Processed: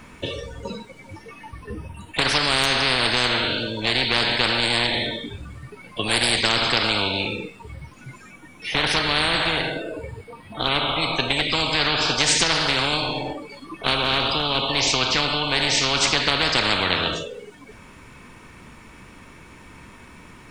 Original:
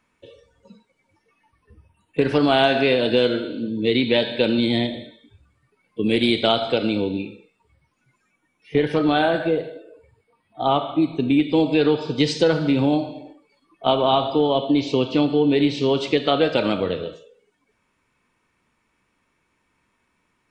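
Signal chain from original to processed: bass shelf 220 Hz +7.5 dB; spectrum-flattening compressor 10:1; trim -1.5 dB

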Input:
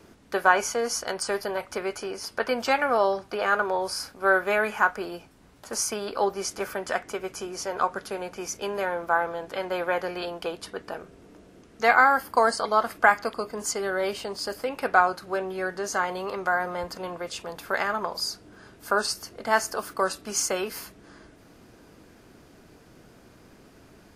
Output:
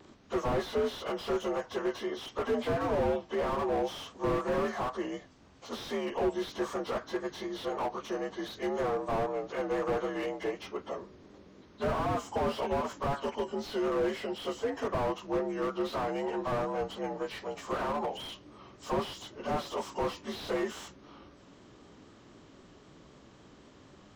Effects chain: frequency axis rescaled in octaves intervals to 85%; vibrato 3.9 Hz 45 cents; slew-rate limiter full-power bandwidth 26 Hz

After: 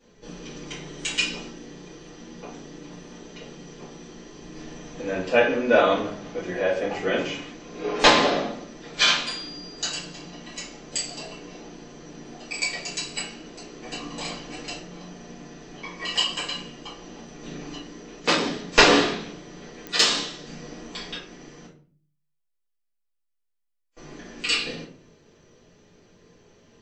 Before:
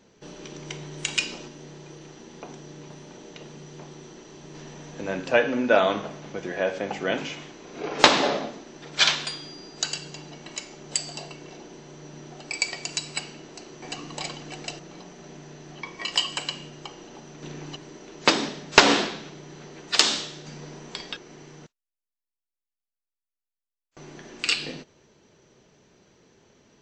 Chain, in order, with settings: simulated room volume 34 m³, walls mixed, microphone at 1.8 m; clicks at 19.87 s, -10 dBFS; 18.02–18.47 s: transformer saturation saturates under 1.5 kHz; trim -9 dB

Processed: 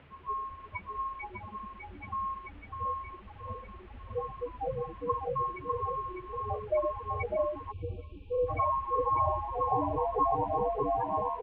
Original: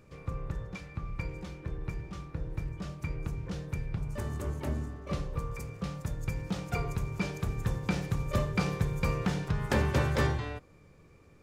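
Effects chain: high-order bell 890 Hz +10 dB 1.2 oct; echo whose repeats swap between lows and highs 635 ms, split 990 Hz, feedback 67%, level -3 dB; waveshaping leveller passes 1; hum 60 Hz, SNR 16 dB; Chebyshev shaper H 5 -14 dB, 6 -17 dB, 8 -25 dB, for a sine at -10 dBFS; loudest bins only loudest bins 8; added noise pink -53 dBFS; delay 601 ms -5 dB; mistuned SSB -100 Hz 260–3100 Hz; time-frequency box 7.72–8.47 s, 540–2300 Hz -27 dB; trim -2 dB

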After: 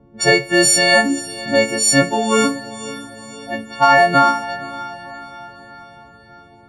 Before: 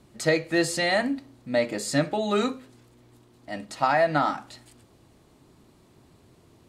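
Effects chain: partials quantised in pitch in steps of 4 st; treble shelf 9.4 kHz -5.5 dB; level-controlled noise filter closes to 630 Hz, open at -20.5 dBFS; echo that smears into a reverb 531 ms, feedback 51%, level -16 dB; dynamic bell 3.5 kHz, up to -7 dB, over -46 dBFS, Q 3.8; trim +8 dB

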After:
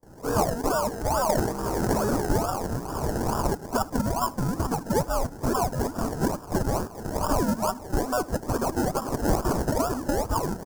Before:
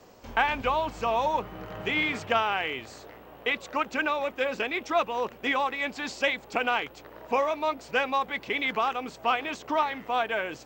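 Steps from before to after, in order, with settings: every band turned upside down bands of 500 Hz; recorder AGC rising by 51 dB/s; 8.93–9.80 s: tilt EQ +4.5 dB/octave; decimation with a swept rate 30×, swing 60% 2.3 Hz; in parallel at -12 dB: Schmitt trigger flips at -22.5 dBFS; on the sum: high-order bell 2.8 kHz -16 dB 1.3 oct; 0.92–2.30 s: transient shaper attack -11 dB, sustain +12 dB; on a send: delay 75 ms -22.5 dB; on the sum: gate with hold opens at -43 dBFS

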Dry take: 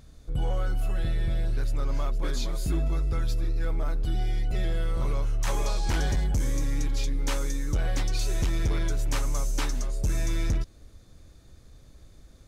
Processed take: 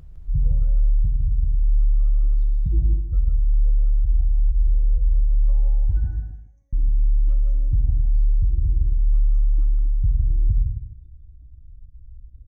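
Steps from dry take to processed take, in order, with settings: spectral contrast enhancement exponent 2.8; in parallel at +1 dB: gain riding; 6.04–6.73 s: on the sum: high-pass 620 Hz 24 dB/octave; 9.41–10.13 s: distance through air 170 m; on a send: feedback delay 157 ms, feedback 18%, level -9 dB; on the sum: gated-style reverb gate 290 ms flat, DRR 1 dB

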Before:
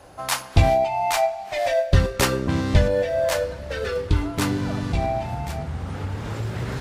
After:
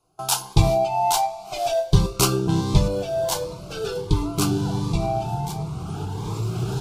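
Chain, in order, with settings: gate with hold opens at -29 dBFS; static phaser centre 370 Hz, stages 8; Shepard-style phaser rising 1.4 Hz; trim +5.5 dB

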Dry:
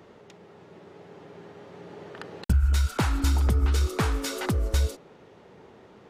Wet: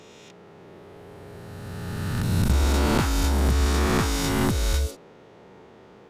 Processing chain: reverse spectral sustain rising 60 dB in 2.77 s; trim -1.5 dB

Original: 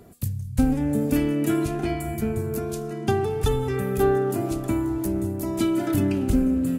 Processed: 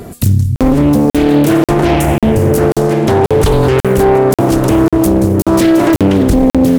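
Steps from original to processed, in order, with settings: crackling interface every 0.54 s, samples 2048, zero, from 0.56 s; loudness maximiser +21.5 dB; loudspeaker Doppler distortion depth 0.76 ms; trim -1 dB

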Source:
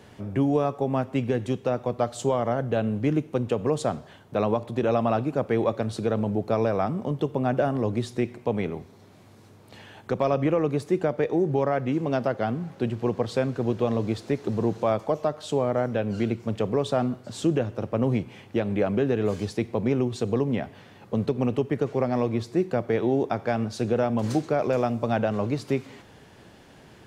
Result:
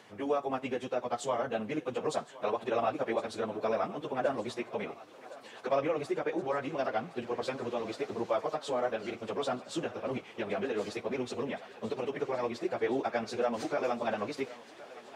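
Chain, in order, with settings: frequency weighting A; plain phase-vocoder stretch 0.56×; thinning echo 1067 ms, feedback 80%, high-pass 420 Hz, level -17 dB

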